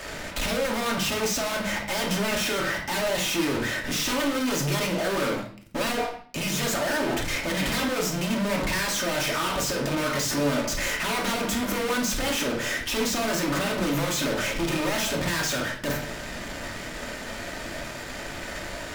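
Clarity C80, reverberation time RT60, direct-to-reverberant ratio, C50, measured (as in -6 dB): 12.0 dB, 0.50 s, 0.0 dB, 7.5 dB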